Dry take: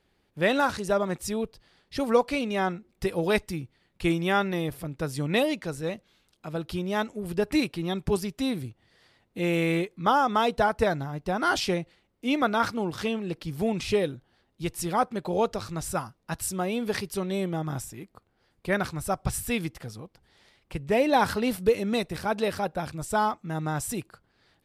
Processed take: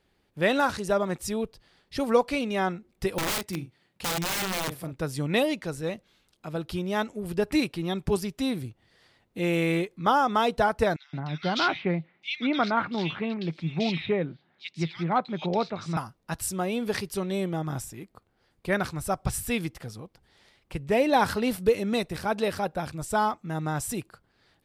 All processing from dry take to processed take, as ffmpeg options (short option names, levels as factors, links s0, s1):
-filter_complex "[0:a]asettb=1/sr,asplit=3[s0][s1][s2];[s0]atrim=end=3.184[s3];[s1]atrim=start=3.18:end=4.93,asetpts=PTS-STARTPTS,afade=t=in:d=0.004:c=qsin,afade=t=out:st=1.746:d=0.004:c=qsin,highpass=110,asplit=2[s4][s5];[s5]adelay=43,volume=0.316[s6];[s4][s6]amix=inputs=2:normalize=0,atrim=end_sample=77175,aeval=exprs='(mod(15*val(0)+1,2)-1)/15':c=same[s7];[s2]atrim=start=4.926[s8];[s3][s7]acrossfade=d=0.004:c1=hsin:c2=qsin[s9];[s9][s8]acrossfade=d=0.004:c1=qsin:c2=hsin,asettb=1/sr,asplit=3[s10][s11][s12];[s10]atrim=end=10.964[s13];[s11]atrim=start=10.96:end=15.97,asetpts=PTS-STARTPTS,afade=t=in:d=0.004:c=qsin,afade=t=out:st=5.006:d=0.004:c=qsin,highpass=160,equalizer=f=160:t=q:w=4:g=9,equalizer=f=470:t=q:w=4:g=-5,equalizer=f=2200:t=q:w=4:g=8,equalizer=f=3800:t=q:w=4:g=6,lowpass=f=4800:w=0.5412,lowpass=f=4800:w=1.3066,acrossover=split=2200[s14][s15];[s14]adelay=170[s16];[s16][s15]amix=inputs=2:normalize=0,atrim=end_sample=220941[s17];[s12]atrim=start=15.966[s18];[s13][s17]acrossfade=d=0.004:c1=hsin:c2=qsin[s19];[s19][s18]acrossfade=d=0.004:c1=qsin:c2=hsin"